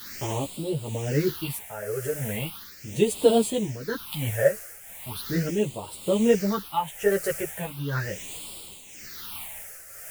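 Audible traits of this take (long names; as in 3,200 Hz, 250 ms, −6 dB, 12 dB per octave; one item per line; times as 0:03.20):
a quantiser's noise floor 6 bits, dither triangular
phaser sweep stages 6, 0.38 Hz, lowest notch 250–1,700 Hz
tremolo triangle 0.99 Hz, depth 70%
a shimmering, thickened sound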